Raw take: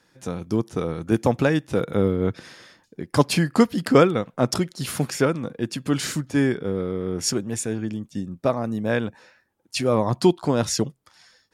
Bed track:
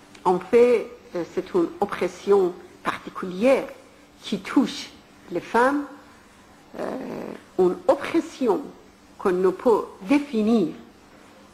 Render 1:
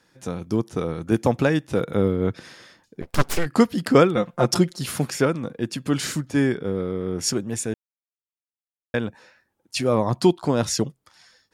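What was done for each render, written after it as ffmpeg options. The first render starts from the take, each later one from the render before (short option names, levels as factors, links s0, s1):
-filter_complex "[0:a]asplit=3[s0][s1][s2];[s0]afade=t=out:st=3.01:d=0.02[s3];[s1]aeval=exprs='abs(val(0))':c=same,afade=t=in:st=3.01:d=0.02,afade=t=out:st=3.45:d=0.02[s4];[s2]afade=t=in:st=3.45:d=0.02[s5];[s3][s4][s5]amix=inputs=3:normalize=0,asettb=1/sr,asplit=3[s6][s7][s8];[s6]atrim=end=4.164[s9];[s7]atrim=start=4.16:end=4.79,asetpts=PTS-STARTPTS,afade=t=in:d=0.004:c=qsin,afade=t=out:st=0.626:d=0.004:c=qsin,aecho=1:1:5.7:0.92,atrim=end_sample=27783[s10];[s8]atrim=start=4.786[s11];[s9][s10]acrossfade=d=0.004:c1=hsin:c2=qsin[s12];[s12][s11]acrossfade=d=0.004:c1=qsin:c2=hsin,asplit=3[s13][s14][s15];[s13]atrim=end=7.74,asetpts=PTS-STARTPTS,afade=t=out:st=7.736:d=0.004:c=hsin[s16];[s14]atrim=start=7.74:end=8.94,asetpts=PTS-STARTPTS,volume=0[s17];[s15]atrim=start=8.94,asetpts=PTS-STARTPTS,afade=t=in:d=0.004:c=hsin[s18];[s16][s17][s18]concat=n=3:v=0:a=1"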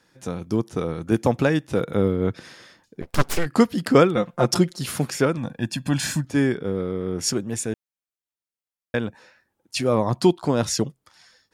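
-filter_complex "[0:a]asettb=1/sr,asplit=3[s0][s1][s2];[s0]atrim=end=5.374[s3];[s1]atrim=start=5.37:end=6.25,asetpts=PTS-STARTPTS,afade=t=in:d=0.004:c=qsin,afade=t=out:st=0.876:d=0.004:c=qsin,aecho=1:1:1.2:0.74,atrim=end_sample=38808[s4];[s2]atrim=start=6.246[s5];[s3][s4]acrossfade=d=0.004:c1=hsin:c2=qsin[s6];[s6][s5]acrossfade=d=0.004:c1=qsin:c2=hsin"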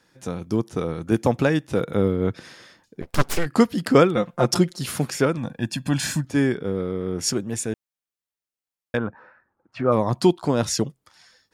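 -filter_complex "[0:a]asplit=3[s0][s1][s2];[s0]afade=t=out:st=8.97:d=0.02[s3];[s1]lowpass=f=1300:t=q:w=2.6,afade=t=in:st=8.97:d=0.02,afade=t=out:st=9.91:d=0.02[s4];[s2]afade=t=in:st=9.91:d=0.02[s5];[s3][s4][s5]amix=inputs=3:normalize=0"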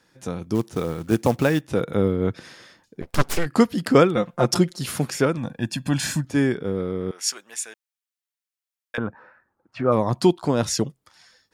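-filter_complex "[0:a]asplit=3[s0][s1][s2];[s0]afade=t=out:st=0.54:d=0.02[s3];[s1]acrusher=bits=5:mode=log:mix=0:aa=0.000001,afade=t=in:st=0.54:d=0.02,afade=t=out:st=1.6:d=0.02[s4];[s2]afade=t=in:st=1.6:d=0.02[s5];[s3][s4][s5]amix=inputs=3:normalize=0,asettb=1/sr,asplit=3[s6][s7][s8];[s6]atrim=end=7.114[s9];[s7]atrim=start=7.11:end=8.98,asetpts=PTS-STARTPTS,afade=t=in:d=0.004:c=qsin,afade=t=out:st=1.866:d=0.004:c=qsin,highpass=1200[s10];[s8]atrim=start=8.976[s11];[s9][s10]acrossfade=d=0.004:c1=hsin:c2=qsin[s12];[s12][s11]acrossfade=d=0.004:c1=qsin:c2=hsin"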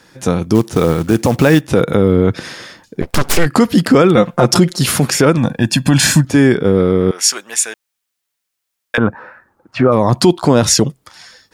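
-af "alimiter=level_in=5.31:limit=0.891:release=50:level=0:latency=1"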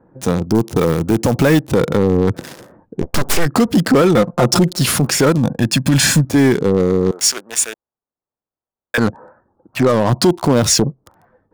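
-filter_complex "[0:a]acrossover=split=1000[s0][s1];[s1]acrusher=bits=3:mix=0:aa=0.5[s2];[s0][s2]amix=inputs=2:normalize=0,asoftclip=type=tanh:threshold=0.562"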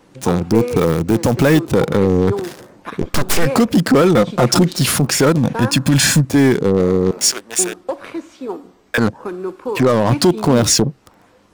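-filter_complex "[1:a]volume=0.562[s0];[0:a][s0]amix=inputs=2:normalize=0"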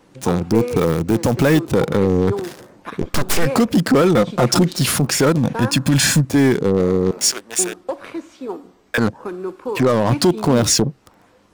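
-af "volume=0.794"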